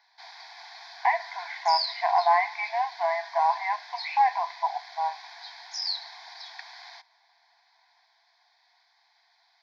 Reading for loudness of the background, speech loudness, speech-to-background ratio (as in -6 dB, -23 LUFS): -37.0 LUFS, -27.0 LUFS, 10.0 dB